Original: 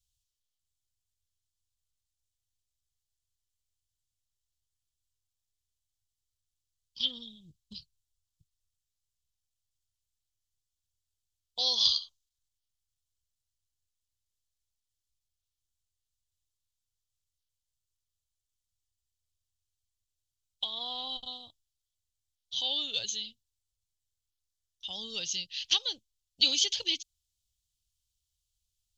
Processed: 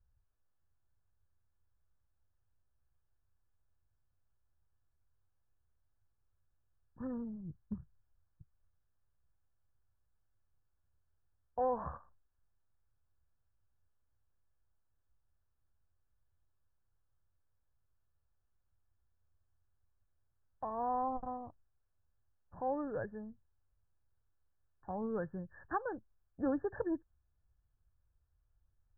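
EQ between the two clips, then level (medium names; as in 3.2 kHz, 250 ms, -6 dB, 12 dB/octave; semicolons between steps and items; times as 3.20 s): brick-wall FIR low-pass 1.8 kHz; distance through air 240 m; +11.0 dB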